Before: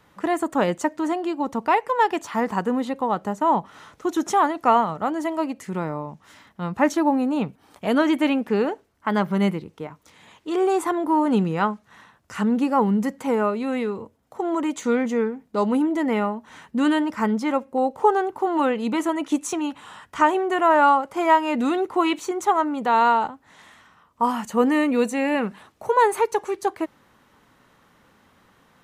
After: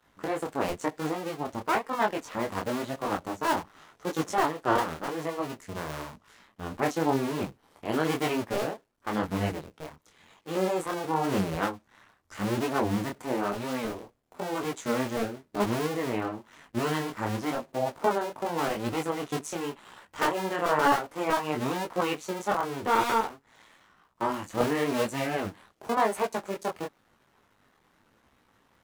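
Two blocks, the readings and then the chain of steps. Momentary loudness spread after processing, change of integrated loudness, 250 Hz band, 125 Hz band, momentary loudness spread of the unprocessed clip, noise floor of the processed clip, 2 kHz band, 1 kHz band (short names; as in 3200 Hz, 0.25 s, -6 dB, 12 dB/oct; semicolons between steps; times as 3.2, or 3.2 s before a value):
11 LU, -7.5 dB, -9.5 dB, -2.0 dB, 11 LU, -67 dBFS, -4.5 dB, -8.0 dB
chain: cycle switcher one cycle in 2, muted; detuned doubles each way 33 cents; gain -1 dB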